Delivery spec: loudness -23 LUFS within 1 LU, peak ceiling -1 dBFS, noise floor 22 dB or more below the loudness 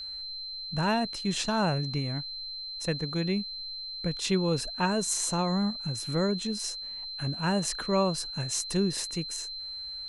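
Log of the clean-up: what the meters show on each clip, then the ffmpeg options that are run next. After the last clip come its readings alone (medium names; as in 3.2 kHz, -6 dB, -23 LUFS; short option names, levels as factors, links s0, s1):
steady tone 4.1 kHz; tone level -36 dBFS; loudness -30.0 LUFS; peak level -13.0 dBFS; loudness target -23.0 LUFS
-> -af "bandreject=f=4100:w=30"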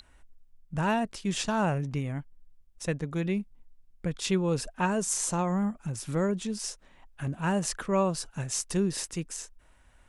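steady tone not found; loudness -30.5 LUFS; peak level -13.0 dBFS; loudness target -23.0 LUFS
-> -af "volume=2.37"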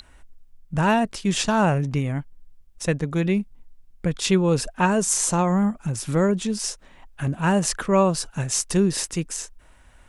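loudness -23.0 LUFS; peak level -5.5 dBFS; noise floor -52 dBFS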